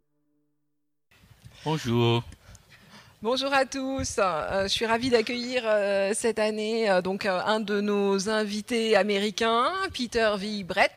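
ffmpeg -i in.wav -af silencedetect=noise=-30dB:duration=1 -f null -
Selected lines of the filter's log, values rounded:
silence_start: 0.00
silence_end: 1.66 | silence_duration: 1.66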